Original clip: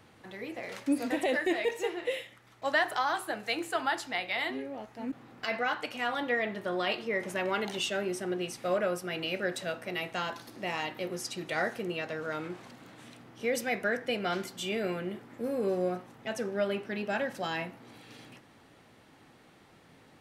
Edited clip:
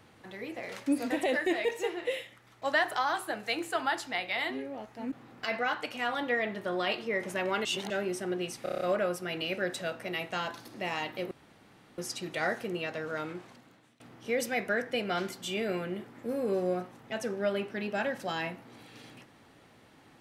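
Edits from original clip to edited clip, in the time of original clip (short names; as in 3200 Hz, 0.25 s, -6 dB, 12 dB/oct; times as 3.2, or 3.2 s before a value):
7.65–7.9 reverse
8.63 stutter 0.03 s, 7 plays
11.13 insert room tone 0.67 s
12.35–13.15 fade out, to -23 dB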